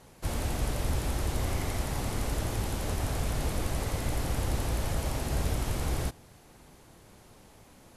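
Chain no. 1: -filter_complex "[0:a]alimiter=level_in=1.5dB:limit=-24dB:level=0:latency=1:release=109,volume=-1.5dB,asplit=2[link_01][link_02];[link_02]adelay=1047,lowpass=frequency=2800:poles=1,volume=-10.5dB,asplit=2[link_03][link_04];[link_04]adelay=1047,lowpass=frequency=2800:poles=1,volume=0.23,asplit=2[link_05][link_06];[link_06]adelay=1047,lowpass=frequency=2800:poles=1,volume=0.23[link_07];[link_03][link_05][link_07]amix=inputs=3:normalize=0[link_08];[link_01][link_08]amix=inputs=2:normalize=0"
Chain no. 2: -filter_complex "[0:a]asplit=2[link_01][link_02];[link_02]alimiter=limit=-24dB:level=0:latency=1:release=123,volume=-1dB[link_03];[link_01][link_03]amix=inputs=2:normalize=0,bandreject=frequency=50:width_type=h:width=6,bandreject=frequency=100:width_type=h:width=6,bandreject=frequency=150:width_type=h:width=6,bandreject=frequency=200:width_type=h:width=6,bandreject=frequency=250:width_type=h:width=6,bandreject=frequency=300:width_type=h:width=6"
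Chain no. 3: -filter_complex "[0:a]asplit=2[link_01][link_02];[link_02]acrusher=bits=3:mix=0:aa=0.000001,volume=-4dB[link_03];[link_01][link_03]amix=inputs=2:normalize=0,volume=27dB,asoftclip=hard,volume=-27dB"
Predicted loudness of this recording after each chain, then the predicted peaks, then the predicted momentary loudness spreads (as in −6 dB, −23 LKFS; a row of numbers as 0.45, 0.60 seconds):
−37.0, −29.0, −34.0 LKFS; −23.5, −13.5, −27.0 dBFS; 11, 1, 1 LU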